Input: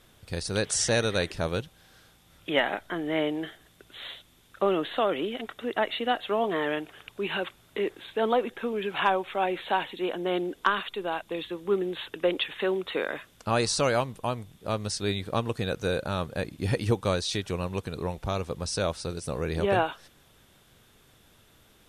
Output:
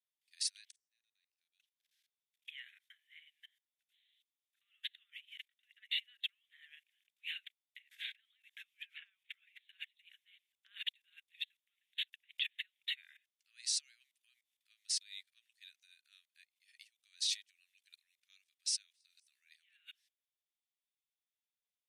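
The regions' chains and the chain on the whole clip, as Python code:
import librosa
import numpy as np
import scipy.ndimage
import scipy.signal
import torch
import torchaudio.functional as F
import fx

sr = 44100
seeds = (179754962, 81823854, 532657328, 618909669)

y = fx.chain(x, sr, fx.gate_flip(shuts_db=-23.0, range_db=-36),
    fx.doubler(ms=43.0, db=-7),
    fx.band_squash(depth_pct=70), at=(0.64, 1.6))
y = fx.chain(y, sr, fx.high_shelf(hz=2200.0, db=-2.5),
    fx.notch(hz=390.0, q=12.0),
    fx.band_squash(depth_pct=100), at=(7.91, 9.59))
y = fx.level_steps(y, sr, step_db=19)
y = scipy.signal.sosfilt(scipy.signal.butter(8, 1900.0, 'highpass', fs=sr, output='sos'), y)
y = fx.upward_expand(y, sr, threshold_db=-54.0, expansion=2.5)
y = y * 10.0 ** (5.5 / 20.0)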